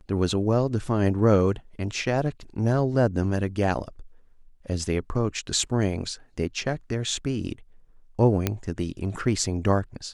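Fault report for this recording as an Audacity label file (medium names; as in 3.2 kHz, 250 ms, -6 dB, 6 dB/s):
8.470000	8.470000	pop -8 dBFS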